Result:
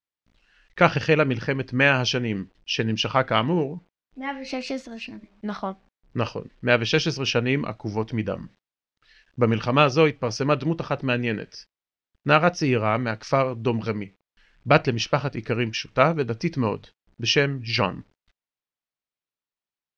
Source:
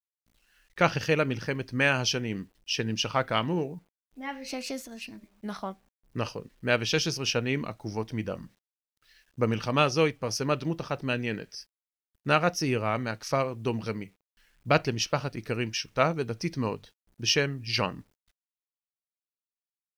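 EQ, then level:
low-pass filter 4,900 Hz 12 dB per octave
high-frequency loss of the air 51 metres
+6.0 dB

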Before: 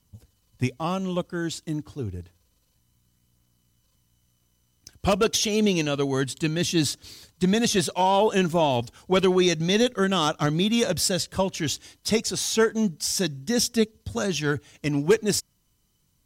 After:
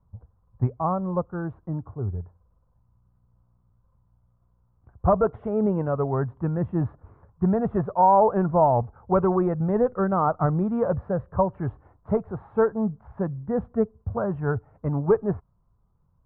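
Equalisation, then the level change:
Butterworth low-pass 1,200 Hz 36 dB per octave
high-frequency loss of the air 63 metres
parametric band 290 Hz −12.5 dB 1.2 octaves
+6.5 dB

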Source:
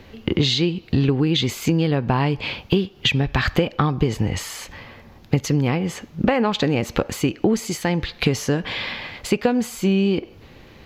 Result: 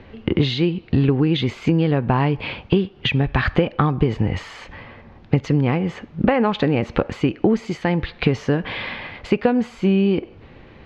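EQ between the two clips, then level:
low-pass filter 2,600 Hz 12 dB per octave
+1.5 dB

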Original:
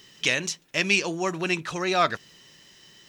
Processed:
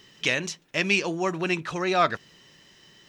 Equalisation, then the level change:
high-shelf EQ 4,100 Hz −8 dB
+1.0 dB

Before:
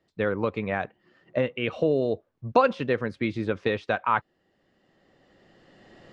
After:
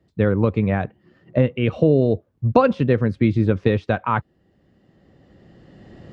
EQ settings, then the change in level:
high-pass filter 43 Hz
low-shelf EQ 190 Hz +11 dB
low-shelf EQ 460 Hz +8 dB
0.0 dB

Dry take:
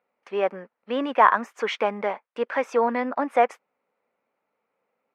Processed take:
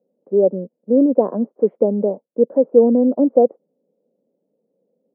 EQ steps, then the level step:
Chebyshev band-pass filter 160–560 Hz, order 3
high-frequency loss of the air 170 metres
low-shelf EQ 380 Hz +11.5 dB
+7.5 dB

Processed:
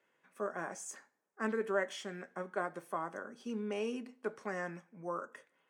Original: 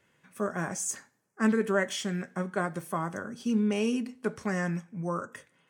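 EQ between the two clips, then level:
high-pass filter 380 Hz 12 dB per octave
high-shelf EQ 2,400 Hz −9.5 dB
high-shelf EQ 11,000 Hz −3.5 dB
−3.5 dB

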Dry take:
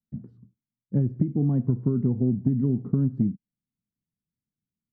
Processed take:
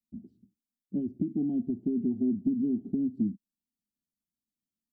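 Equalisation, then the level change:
Butterworth band-reject 1,100 Hz, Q 0.75
low-shelf EQ 150 Hz −5.5 dB
phaser with its sweep stopped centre 490 Hz, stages 6
0.0 dB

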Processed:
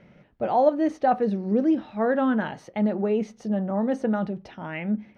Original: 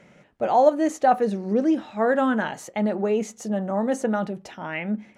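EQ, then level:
Savitzky-Golay smoothing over 15 samples
low-shelf EQ 84 Hz +7 dB
low-shelf EQ 380 Hz +6 dB
−4.5 dB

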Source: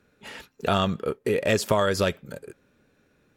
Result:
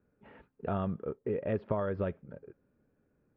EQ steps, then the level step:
high-frequency loss of the air 460 metres
head-to-tape spacing loss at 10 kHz 43 dB
−6.0 dB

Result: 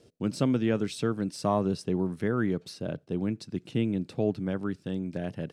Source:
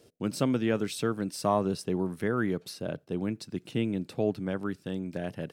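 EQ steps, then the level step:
high-frequency loss of the air 60 metres
low-shelf EQ 390 Hz +6 dB
high-shelf EQ 4,400 Hz +7 dB
−2.5 dB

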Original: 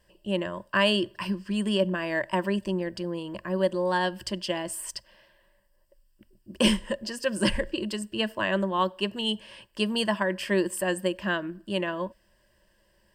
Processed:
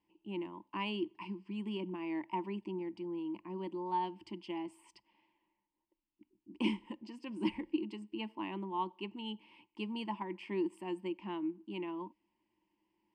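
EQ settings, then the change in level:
formant filter u
+2.5 dB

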